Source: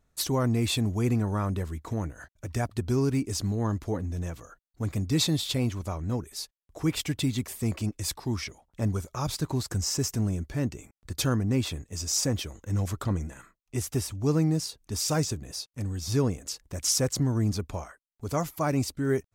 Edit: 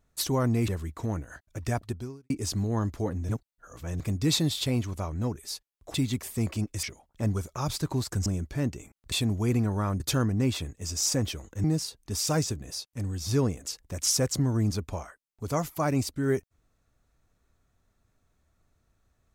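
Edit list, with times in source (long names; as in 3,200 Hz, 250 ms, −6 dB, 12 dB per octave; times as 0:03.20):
0:00.68–0:01.56: move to 0:11.11
0:02.71–0:03.18: fade out quadratic
0:04.17–0:04.88: reverse
0:06.82–0:07.19: remove
0:08.08–0:08.42: remove
0:09.85–0:10.25: remove
0:12.75–0:14.45: remove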